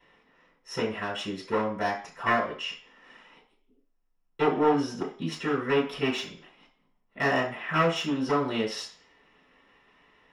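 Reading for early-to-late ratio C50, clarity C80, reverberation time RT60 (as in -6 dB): 7.5 dB, 12.5 dB, 0.45 s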